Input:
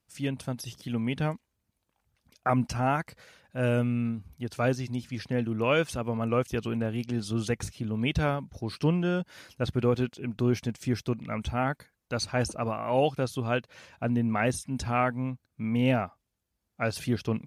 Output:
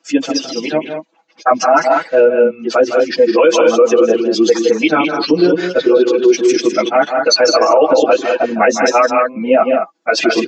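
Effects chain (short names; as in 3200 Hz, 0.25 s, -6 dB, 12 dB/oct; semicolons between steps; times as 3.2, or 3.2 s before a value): spectral contrast raised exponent 1.6; steep high-pass 280 Hz 36 dB/oct; comb 6.1 ms, depth 78%; plain phase-vocoder stretch 0.6×; downsampling 16000 Hz; on a send: loudspeakers at several distances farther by 55 m -10 dB, 70 m -9 dB; on the sum: maximiser +26 dB; gain -1 dB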